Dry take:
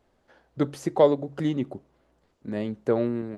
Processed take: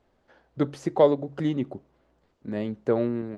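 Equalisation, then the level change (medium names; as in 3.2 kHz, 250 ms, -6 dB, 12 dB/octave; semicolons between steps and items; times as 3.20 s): distance through air 53 m; 0.0 dB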